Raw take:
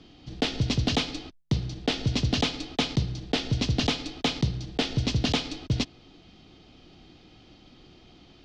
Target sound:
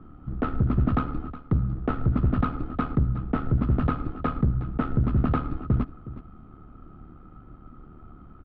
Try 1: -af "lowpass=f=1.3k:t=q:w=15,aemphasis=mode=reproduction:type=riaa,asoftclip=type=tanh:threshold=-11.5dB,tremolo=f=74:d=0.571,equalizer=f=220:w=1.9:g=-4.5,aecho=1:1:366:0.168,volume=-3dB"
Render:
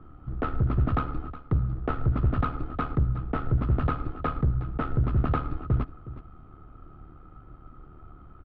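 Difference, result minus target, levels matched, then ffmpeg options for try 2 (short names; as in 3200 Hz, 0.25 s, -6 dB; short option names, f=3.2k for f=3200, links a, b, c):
250 Hz band -3.5 dB
-af "lowpass=f=1.3k:t=q:w=15,aemphasis=mode=reproduction:type=riaa,asoftclip=type=tanh:threshold=-11.5dB,tremolo=f=74:d=0.571,equalizer=f=220:w=1.9:g=4,aecho=1:1:366:0.168,volume=-3dB"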